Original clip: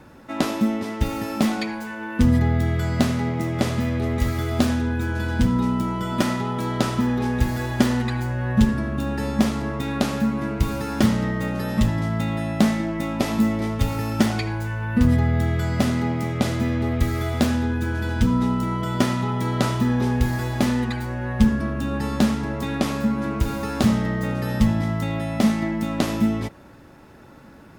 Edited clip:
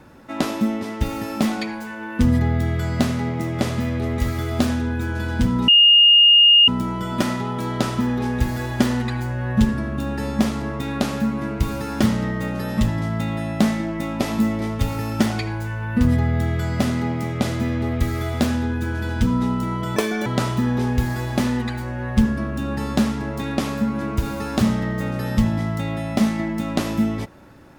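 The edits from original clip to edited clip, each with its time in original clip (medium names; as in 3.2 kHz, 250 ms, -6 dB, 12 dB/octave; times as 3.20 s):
5.68 s: add tone 2.84 kHz -8.5 dBFS 1.00 s
18.96–19.49 s: speed 176%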